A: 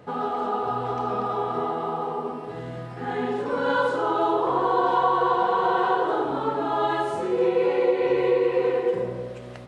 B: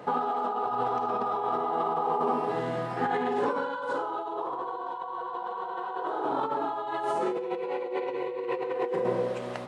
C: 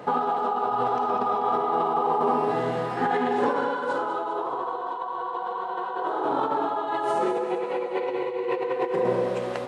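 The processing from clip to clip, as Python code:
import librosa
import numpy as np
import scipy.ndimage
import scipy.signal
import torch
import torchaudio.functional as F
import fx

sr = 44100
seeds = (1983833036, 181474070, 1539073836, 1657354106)

y1 = fx.peak_eq(x, sr, hz=920.0, db=6.0, octaves=1.0)
y1 = fx.over_compress(y1, sr, threshold_db=-28.0, ratio=-1.0)
y1 = scipy.signal.sosfilt(scipy.signal.butter(2, 180.0, 'highpass', fs=sr, output='sos'), y1)
y1 = y1 * librosa.db_to_amplitude(-2.5)
y2 = fx.echo_feedback(y1, sr, ms=199, feedback_pct=55, wet_db=-9.0)
y2 = y2 * librosa.db_to_amplitude(3.5)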